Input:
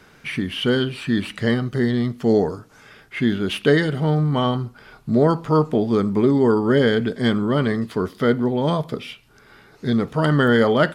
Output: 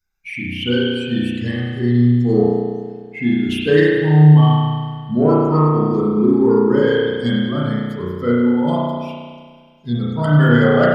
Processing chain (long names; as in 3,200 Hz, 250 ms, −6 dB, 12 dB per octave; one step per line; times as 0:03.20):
spectral dynamics exaggerated over time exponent 2
in parallel at −11.5 dB: soft clipping −18 dBFS, distortion −13 dB
on the sum: delay with a high-pass on its return 99 ms, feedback 82%, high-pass 3,200 Hz, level −18 dB
spring reverb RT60 1.7 s, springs 33 ms, chirp 75 ms, DRR −6.5 dB
level −1.5 dB